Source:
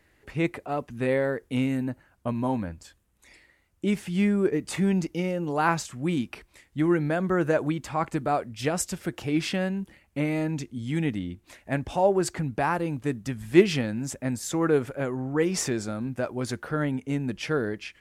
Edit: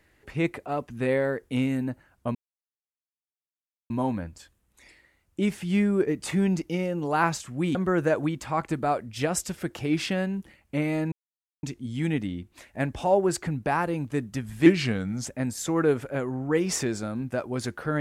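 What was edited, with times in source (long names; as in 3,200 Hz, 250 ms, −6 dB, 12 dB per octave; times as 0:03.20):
0:02.35: splice in silence 1.55 s
0:06.20–0:07.18: remove
0:10.55: splice in silence 0.51 s
0:13.58–0:14.12: play speed 89%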